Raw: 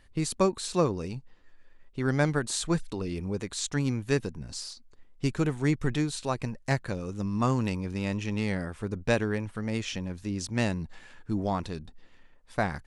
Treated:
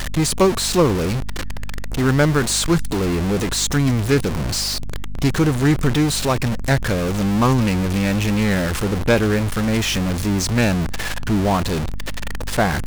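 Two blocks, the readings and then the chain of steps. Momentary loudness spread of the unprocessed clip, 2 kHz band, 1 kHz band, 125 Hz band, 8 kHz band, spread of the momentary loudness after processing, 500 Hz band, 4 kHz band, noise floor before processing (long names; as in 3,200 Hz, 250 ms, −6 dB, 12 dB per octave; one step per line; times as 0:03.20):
11 LU, +11.0 dB, +10.5 dB, +11.5 dB, +13.0 dB, 9 LU, +10.0 dB, +14.5 dB, −55 dBFS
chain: converter with a step at zero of −25.5 dBFS
mains hum 50 Hz, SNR 14 dB
highs frequency-modulated by the lows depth 0.17 ms
level +7 dB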